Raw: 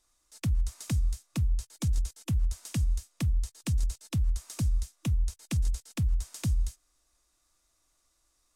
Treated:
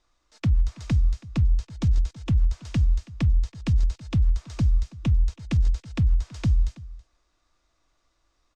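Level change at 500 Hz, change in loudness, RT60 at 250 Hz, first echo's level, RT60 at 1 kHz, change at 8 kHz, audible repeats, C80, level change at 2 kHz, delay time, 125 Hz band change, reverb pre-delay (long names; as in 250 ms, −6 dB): +6.0 dB, +6.5 dB, no reverb audible, −19.5 dB, no reverb audible, −8.0 dB, 1, no reverb audible, +4.5 dB, 326 ms, +6.5 dB, no reverb audible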